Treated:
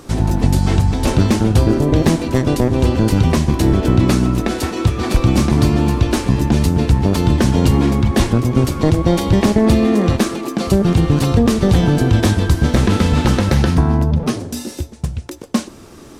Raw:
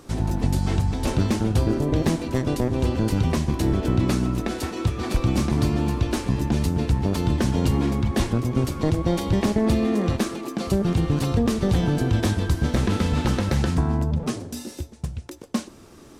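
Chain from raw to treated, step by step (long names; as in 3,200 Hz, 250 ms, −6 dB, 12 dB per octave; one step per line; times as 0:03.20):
0:13.54–0:14.39: parametric band 7,600 Hz −7 dB 0.33 octaves
level +8 dB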